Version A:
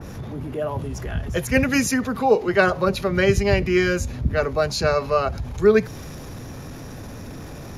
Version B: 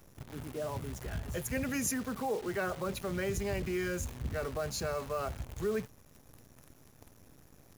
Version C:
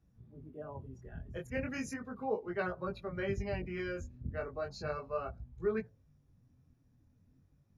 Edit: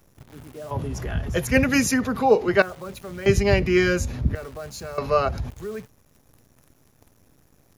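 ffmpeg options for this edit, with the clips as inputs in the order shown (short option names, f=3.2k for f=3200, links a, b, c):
-filter_complex "[0:a]asplit=3[a][b][c];[1:a]asplit=4[d][e][f][g];[d]atrim=end=0.712[h];[a]atrim=start=0.708:end=2.622[i];[e]atrim=start=2.618:end=3.262[j];[b]atrim=start=3.258:end=4.352[k];[f]atrim=start=4.348:end=4.982[l];[c]atrim=start=4.978:end=5.502[m];[g]atrim=start=5.498[n];[h][i]acrossfade=d=0.004:c1=hsin:c2=hsin[o];[o][j]acrossfade=d=0.004:c1=hsin:c2=hsin[p];[p][k]acrossfade=d=0.004:c1=hsin:c2=hsin[q];[q][l]acrossfade=d=0.004:c1=hsin:c2=hsin[r];[r][m]acrossfade=d=0.004:c1=hsin:c2=hsin[s];[s][n]acrossfade=d=0.004:c1=hsin:c2=hsin"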